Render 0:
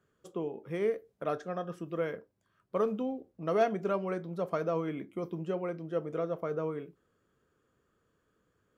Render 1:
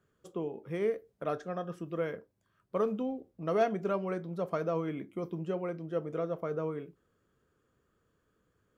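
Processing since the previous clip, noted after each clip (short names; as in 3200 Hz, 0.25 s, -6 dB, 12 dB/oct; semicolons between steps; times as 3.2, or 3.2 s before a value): low shelf 130 Hz +4.5 dB; gain -1 dB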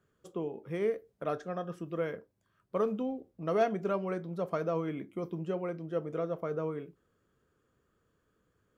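nothing audible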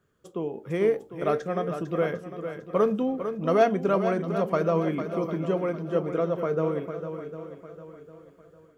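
swung echo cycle 0.752 s, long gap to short 1.5:1, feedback 33%, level -9 dB; AGC gain up to 4.5 dB; gain +3 dB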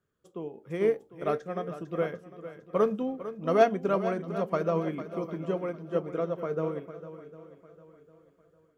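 upward expander 1.5:1, over -35 dBFS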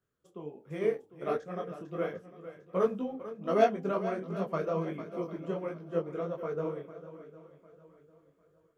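detuned doubles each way 48 cents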